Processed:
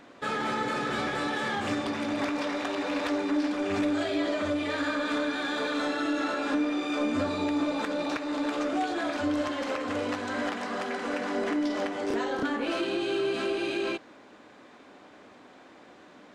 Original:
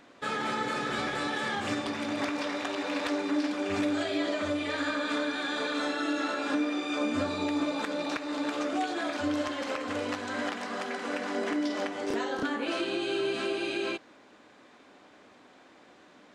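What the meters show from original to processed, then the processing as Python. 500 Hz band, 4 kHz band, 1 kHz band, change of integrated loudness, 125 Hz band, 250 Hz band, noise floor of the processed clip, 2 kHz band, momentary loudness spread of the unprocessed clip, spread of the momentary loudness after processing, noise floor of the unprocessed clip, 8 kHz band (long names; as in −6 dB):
+2.0 dB, −0.5 dB, +1.5 dB, +1.5 dB, +2.5 dB, +2.0 dB, −53 dBFS, +0.5 dB, 4 LU, 3 LU, −57 dBFS, −1.0 dB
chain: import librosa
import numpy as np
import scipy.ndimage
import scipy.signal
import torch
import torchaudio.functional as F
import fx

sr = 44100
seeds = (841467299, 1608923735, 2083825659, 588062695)

p1 = fx.high_shelf(x, sr, hz=2000.0, db=-4.0)
p2 = 10.0 ** (-36.0 / 20.0) * np.tanh(p1 / 10.0 ** (-36.0 / 20.0))
y = p1 + F.gain(torch.from_numpy(p2), -3.0).numpy()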